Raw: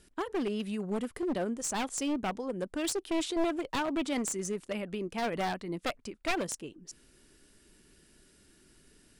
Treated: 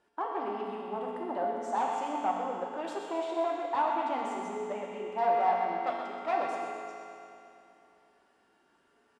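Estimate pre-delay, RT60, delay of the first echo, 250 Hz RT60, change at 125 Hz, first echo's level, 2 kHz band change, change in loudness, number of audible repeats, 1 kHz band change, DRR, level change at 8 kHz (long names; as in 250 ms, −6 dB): 4 ms, 2.8 s, 126 ms, 2.8 s, below −10 dB, −8.5 dB, −3.0 dB, +1.0 dB, 1, +9.0 dB, −3.5 dB, below −15 dB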